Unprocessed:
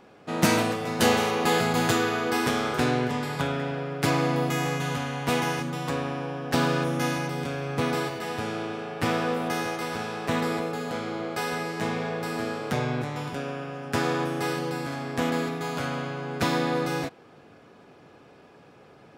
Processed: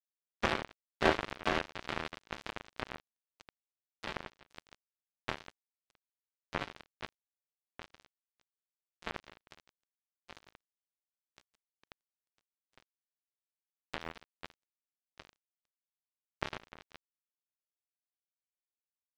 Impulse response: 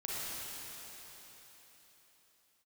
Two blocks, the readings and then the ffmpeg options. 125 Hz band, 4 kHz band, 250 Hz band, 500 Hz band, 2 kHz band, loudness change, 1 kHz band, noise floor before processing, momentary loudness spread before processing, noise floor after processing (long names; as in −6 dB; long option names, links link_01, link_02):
−22.0 dB, −13.5 dB, −20.0 dB, −16.0 dB, −12.5 dB, −11.5 dB, −15.0 dB, −53 dBFS, 8 LU, below −85 dBFS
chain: -af "highpass=frequency=330:width_type=q:width=0.5412,highpass=frequency=330:width_type=q:width=1.307,lowpass=frequency=2300:width_type=q:width=0.5176,lowpass=frequency=2300:width_type=q:width=0.7071,lowpass=frequency=2300:width_type=q:width=1.932,afreqshift=-110,aecho=1:1:321:0.075,acrusher=bits=2:mix=0:aa=0.5,volume=-2dB"